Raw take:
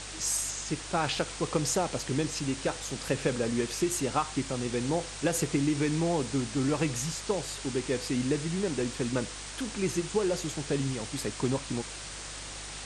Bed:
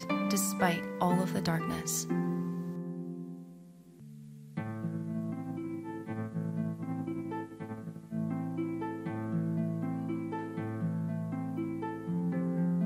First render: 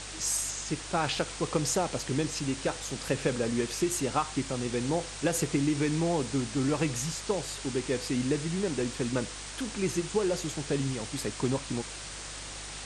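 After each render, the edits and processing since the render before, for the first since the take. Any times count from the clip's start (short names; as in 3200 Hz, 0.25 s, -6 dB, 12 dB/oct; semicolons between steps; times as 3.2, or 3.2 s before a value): nothing audible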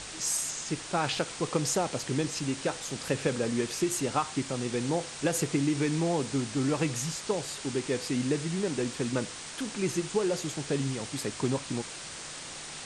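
de-hum 50 Hz, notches 2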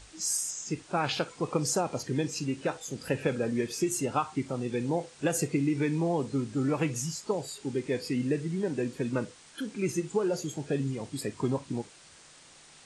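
noise print and reduce 13 dB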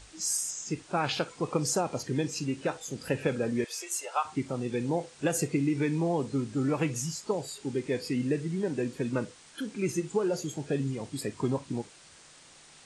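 3.64–4.25 inverse Chebyshev high-pass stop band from 220 Hz, stop band 50 dB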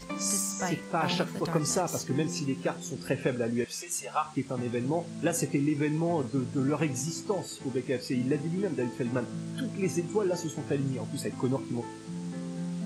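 add bed -4.5 dB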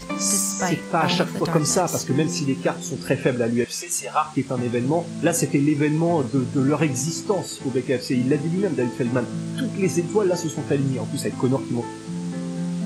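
gain +8 dB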